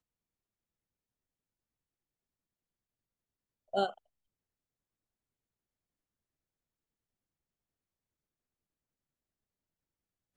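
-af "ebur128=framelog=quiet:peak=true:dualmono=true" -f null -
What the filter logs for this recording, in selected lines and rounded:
Integrated loudness:
  I:         -32.0 LUFS
  Threshold: -42.8 LUFS
Loudness range:
  LRA:         0.0 LU
  Threshold: -60.1 LUFS
  LRA low:   -39.8 LUFS
  LRA high:  -39.8 LUFS
True peak:
  Peak:      -18.3 dBFS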